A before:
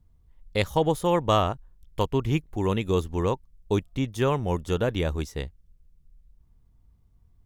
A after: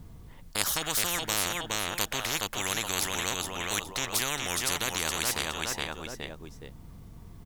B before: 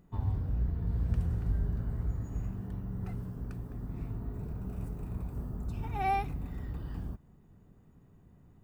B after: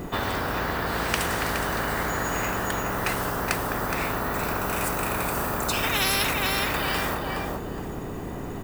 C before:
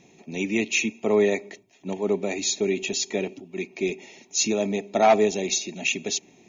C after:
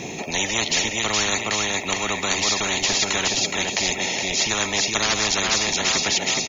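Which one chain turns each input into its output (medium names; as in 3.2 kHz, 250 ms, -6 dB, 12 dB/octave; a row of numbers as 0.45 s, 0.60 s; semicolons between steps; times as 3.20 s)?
on a send: feedback delay 418 ms, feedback 24%, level -8.5 dB; on the sum: spectrum-flattening compressor 10:1; peak normalisation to -6 dBFS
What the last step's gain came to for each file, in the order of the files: +1.5 dB, +12.5 dB, +2.0 dB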